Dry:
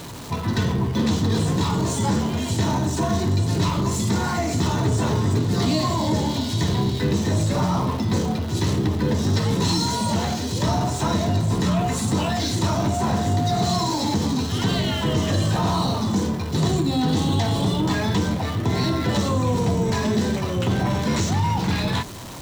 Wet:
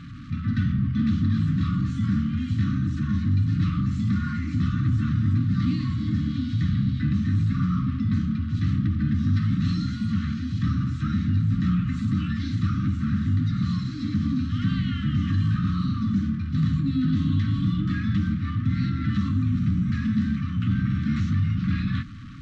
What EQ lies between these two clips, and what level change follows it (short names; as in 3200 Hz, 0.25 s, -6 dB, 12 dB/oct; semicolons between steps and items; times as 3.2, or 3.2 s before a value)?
brick-wall FIR band-stop 300–1100 Hz; tape spacing loss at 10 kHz 38 dB; 0.0 dB